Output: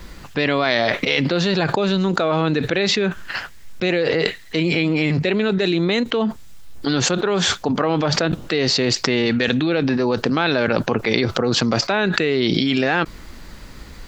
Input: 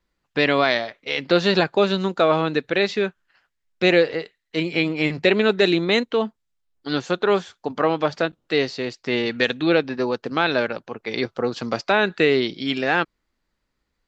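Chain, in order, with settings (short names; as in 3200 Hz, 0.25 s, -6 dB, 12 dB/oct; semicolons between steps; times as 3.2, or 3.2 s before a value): tone controls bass +5 dB, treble +2 dB; fast leveller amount 100%; gain -6 dB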